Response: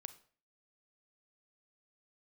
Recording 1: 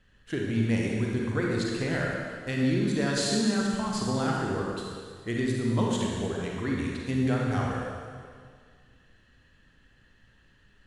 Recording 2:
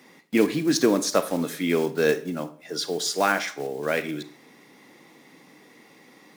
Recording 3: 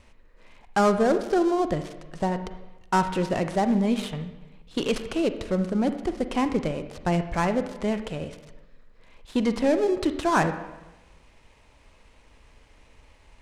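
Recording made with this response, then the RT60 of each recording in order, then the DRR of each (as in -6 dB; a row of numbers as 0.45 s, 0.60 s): 2; 1.9 s, 0.45 s, 1.0 s; -2.0 dB, 11.5 dB, 9.5 dB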